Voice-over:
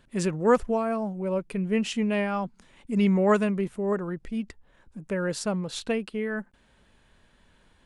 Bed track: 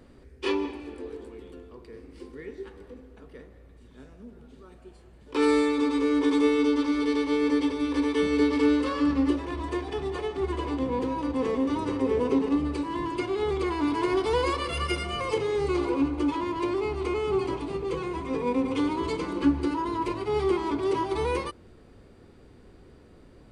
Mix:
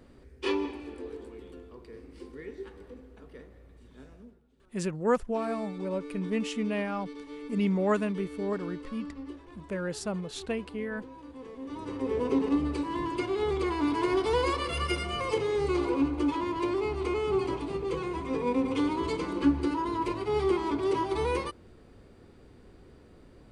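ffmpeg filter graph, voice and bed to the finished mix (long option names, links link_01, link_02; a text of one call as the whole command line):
ffmpeg -i stem1.wav -i stem2.wav -filter_complex "[0:a]adelay=4600,volume=-5dB[link_01];[1:a]volume=14dB,afade=type=out:start_time=4.15:duration=0.26:silence=0.16788,afade=type=in:start_time=11.56:duration=0.91:silence=0.158489[link_02];[link_01][link_02]amix=inputs=2:normalize=0" out.wav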